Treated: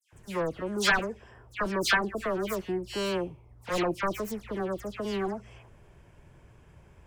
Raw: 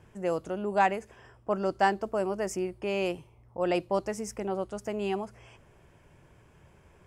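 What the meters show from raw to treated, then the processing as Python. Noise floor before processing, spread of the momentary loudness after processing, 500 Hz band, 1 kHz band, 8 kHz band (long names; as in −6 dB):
−59 dBFS, 13 LU, −2.0 dB, −3.5 dB, +4.5 dB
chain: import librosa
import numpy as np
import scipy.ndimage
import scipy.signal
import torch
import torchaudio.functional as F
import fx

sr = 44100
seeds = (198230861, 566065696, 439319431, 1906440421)

y = fx.self_delay(x, sr, depth_ms=0.69)
y = fx.low_shelf(y, sr, hz=100.0, db=7.5)
y = fx.dispersion(y, sr, late='lows', ms=127.0, hz=2500.0)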